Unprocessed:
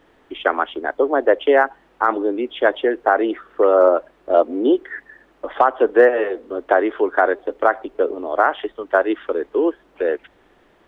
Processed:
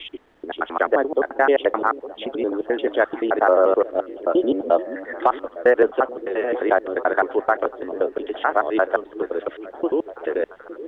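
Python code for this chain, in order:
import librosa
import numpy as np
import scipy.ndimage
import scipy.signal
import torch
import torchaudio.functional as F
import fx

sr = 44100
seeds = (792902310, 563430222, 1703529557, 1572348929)

y = fx.block_reorder(x, sr, ms=87.0, group=5)
y = fx.echo_stepped(y, sr, ms=430, hz=250.0, octaves=0.7, feedback_pct=70, wet_db=-11)
y = F.gain(torch.from_numpy(y), -2.5).numpy()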